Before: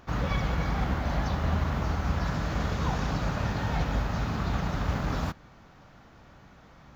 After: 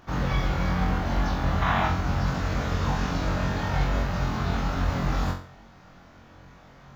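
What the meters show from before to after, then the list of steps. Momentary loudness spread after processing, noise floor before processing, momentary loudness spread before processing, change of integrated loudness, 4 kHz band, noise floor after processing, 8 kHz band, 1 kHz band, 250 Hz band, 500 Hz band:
3 LU, −54 dBFS, 2 LU, +3.0 dB, +3.5 dB, −51 dBFS, can't be measured, +4.5 dB, +3.0 dB, +3.0 dB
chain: gain on a spectral selection 0:01.62–0:01.88, 620–4,000 Hz +10 dB
on a send: flutter between parallel walls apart 3.8 metres, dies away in 0.42 s

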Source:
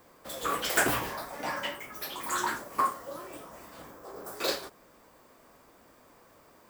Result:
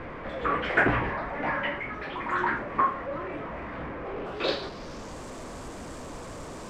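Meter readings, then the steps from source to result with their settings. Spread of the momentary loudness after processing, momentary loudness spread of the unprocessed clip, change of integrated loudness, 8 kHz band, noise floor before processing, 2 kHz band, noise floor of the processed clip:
15 LU, 20 LU, +1.5 dB, below −10 dB, −59 dBFS, +5.5 dB, −40 dBFS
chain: converter with a step at zero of −36.5 dBFS
spectral tilt −2.5 dB per octave
low-pass filter sweep 2,100 Hz → 7,700 Hz, 0:04.02–0:05.20

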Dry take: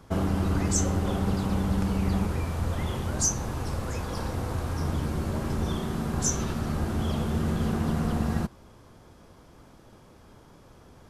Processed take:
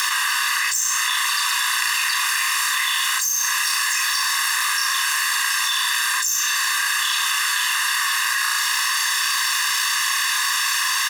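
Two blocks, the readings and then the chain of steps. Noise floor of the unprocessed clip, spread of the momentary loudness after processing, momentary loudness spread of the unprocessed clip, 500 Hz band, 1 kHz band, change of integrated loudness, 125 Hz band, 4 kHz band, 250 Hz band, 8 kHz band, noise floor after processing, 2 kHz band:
−53 dBFS, 0 LU, 6 LU, below −35 dB, +12.0 dB, +10.0 dB, below −40 dB, +23.5 dB, below −40 dB, +13.5 dB, −22 dBFS, +24.0 dB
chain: lower of the sound and its delayed copy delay 1.1 ms
Butterworth high-pass 1,100 Hz 72 dB per octave
spectral tilt +2 dB per octave
comb filter 1.1 ms, depth 74%
flutter between parallel walls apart 5.8 metres, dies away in 0.4 s
upward compression, threshold −44 dBFS
flanger 0.57 Hz, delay 3.9 ms, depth 1.9 ms, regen −87%
harmonic generator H 4 −37 dB, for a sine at −9 dBFS
parametric band 12,000 Hz −2.5 dB
envelope flattener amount 100%

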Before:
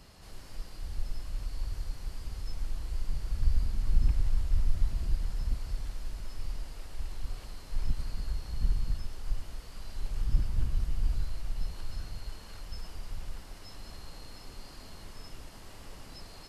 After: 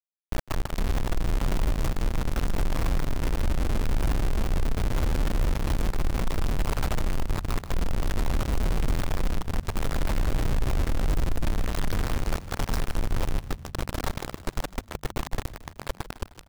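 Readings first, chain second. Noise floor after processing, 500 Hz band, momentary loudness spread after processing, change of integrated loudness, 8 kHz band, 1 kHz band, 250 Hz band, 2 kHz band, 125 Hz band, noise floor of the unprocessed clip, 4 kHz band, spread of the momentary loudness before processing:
−51 dBFS, +19.5 dB, 7 LU, +7.0 dB, can't be measured, +18.0 dB, +17.0 dB, +16.5 dB, +8.0 dB, −48 dBFS, +10.0 dB, 16 LU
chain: adaptive Wiener filter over 25 samples
high shelf with overshoot 2,100 Hz −7.5 dB, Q 3
hum removal 93.14 Hz, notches 3
downward compressor 4 to 1, threshold −29 dBFS, peak gain reduction 12 dB
log-companded quantiser 2 bits
echo with shifted repeats 153 ms, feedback 54%, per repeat −51 Hz, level −14.5 dB
level +4 dB

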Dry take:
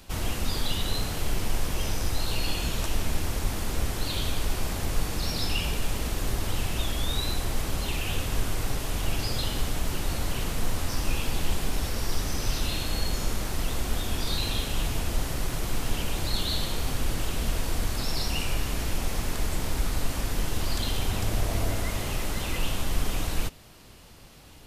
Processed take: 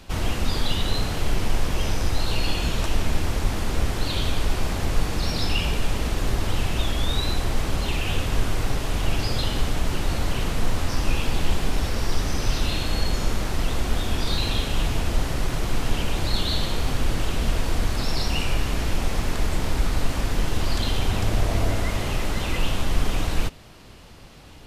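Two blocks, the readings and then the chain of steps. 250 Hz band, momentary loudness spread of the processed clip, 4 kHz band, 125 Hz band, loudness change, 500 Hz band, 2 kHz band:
+5.0 dB, 2 LU, +3.0 dB, +5.0 dB, +4.0 dB, +5.0 dB, +4.5 dB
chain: high-shelf EQ 8,000 Hz −12 dB
level +5 dB

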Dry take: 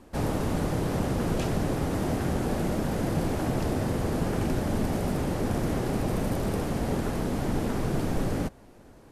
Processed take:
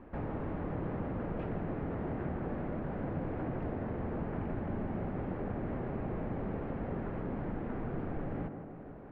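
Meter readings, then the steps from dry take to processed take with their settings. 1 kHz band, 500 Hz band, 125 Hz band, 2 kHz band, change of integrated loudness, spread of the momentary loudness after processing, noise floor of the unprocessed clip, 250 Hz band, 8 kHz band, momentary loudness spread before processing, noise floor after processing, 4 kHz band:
−9.0 dB, −8.5 dB, −9.5 dB, −10.5 dB, −9.5 dB, 1 LU, −52 dBFS, −9.0 dB, below −40 dB, 1 LU, −47 dBFS, below −20 dB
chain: low-pass filter 2,200 Hz 24 dB per octave
downward compressor 2 to 1, threshold −43 dBFS, peak gain reduction 11.5 dB
on a send: tape delay 161 ms, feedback 79%, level −5.5 dB, low-pass 1,700 Hz

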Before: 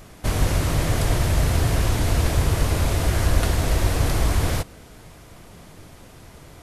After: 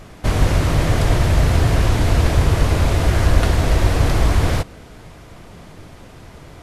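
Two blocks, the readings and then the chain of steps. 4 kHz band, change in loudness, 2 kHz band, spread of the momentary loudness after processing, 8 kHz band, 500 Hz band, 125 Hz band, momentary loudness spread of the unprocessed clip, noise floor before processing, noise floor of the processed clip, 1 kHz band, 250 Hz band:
+2.5 dB, +4.5 dB, +4.5 dB, 3 LU, −1.0 dB, +5.0 dB, +5.0 dB, 3 LU, −46 dBFS, −41 dBFS, +5.0 dB, +5.0 dB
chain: high-shelf EQ 7,300 Hz −11.5 dB
level +5 dB

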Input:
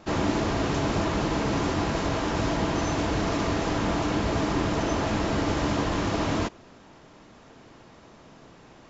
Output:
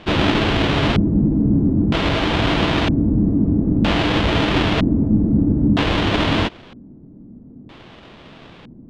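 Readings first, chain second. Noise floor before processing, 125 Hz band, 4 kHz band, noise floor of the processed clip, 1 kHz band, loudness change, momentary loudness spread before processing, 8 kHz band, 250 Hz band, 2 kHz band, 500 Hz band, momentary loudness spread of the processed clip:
−52 dBFS, +10.5 dB, +11.5 dB, −43 dBFS, +4.5 dB, +9.0 dB, 1 LU, can't be measured, +10.5 dB, +8.5 dB, +5.0 dB, 1 LU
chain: each half-wave held at its own peak
auto-filter low-pass square 0.52 Hz 240–3,300 Hz
level +3 dB

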